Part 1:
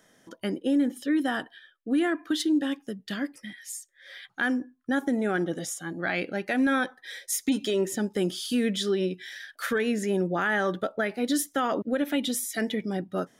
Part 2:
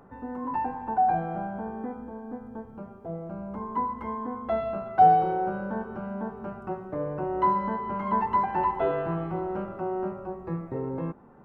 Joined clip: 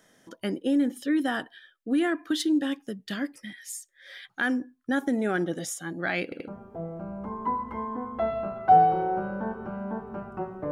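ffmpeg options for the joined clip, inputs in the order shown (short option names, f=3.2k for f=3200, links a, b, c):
-filter_complex "[0:a]apad=whole_dur=10.71,atrim=end=10.71,asplit=3[a][b][c];[a]atrim=end=6.322[d];[b]atrim=start=6.238:end=6.322[e];[c]atrim=start=6.238:end=6.322[f];[1:a]atrim=start=2.778:end=7.01[g];[d][e]acrossfade=d=0.004:c1=hsin:c2=hsin[h];[h][f]acrossfade=d=0.004:c1=hsin:c2=hsin[i];[i][g]acrossfade=d=0.004:c1=hsin:c2=hsin"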